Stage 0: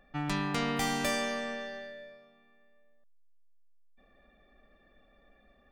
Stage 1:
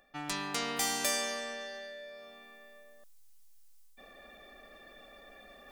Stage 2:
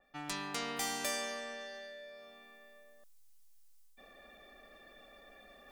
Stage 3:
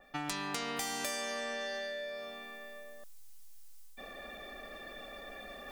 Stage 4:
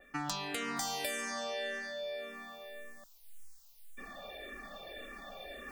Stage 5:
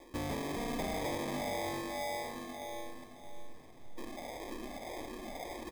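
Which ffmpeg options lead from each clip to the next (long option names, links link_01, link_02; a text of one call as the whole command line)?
ffmpeg -i in.wav -af "bass=frequency=250:gain=-12,treble=frequency=4000:gain=11,areverse,acompressor=mode=upward:threshold=-37dB:ratio=2.5,areverse,volume=-3dB" out.wav
ffmpeg -i in.wav -af "adynamicequalizer=threshold=0.00631:dfrequency=3400:dqfactor=0.7:tfrequency=3400:tqfactor=0.7:attack=5:release=100:ratio=0.375:range=2:mode=cutabove:tftype=highshelf,volume=-3.5dB" out.wav
ffmpeg -i in.wav -af "acompressor=threshold=-45dB:ratio=6,volume=10.5dB" out.wav
ffmpeg -i in.wav -filter_complex "[0:a]asplit=2[link_01][link_02];[link_02]afreqshift=-1.8[link_03];[link_01][link_03]amix=inputs=2:normalize=1,volume=3dB" out.wav
ffmpeg -i in.wav -filter_complex "[0:a]acrusher=samples=31:mix=1:aa=0.000001,asoftclip=type=tanh:threshold=-35.5dB,asplit=2[link_01][link_02];[link_02]aecho=0:1:619|1238|1857:0.299|0.0866|0.0251[link_03];[link_01][link_03]amix=inputs=2:normalize=0,volume=4dB" out.wav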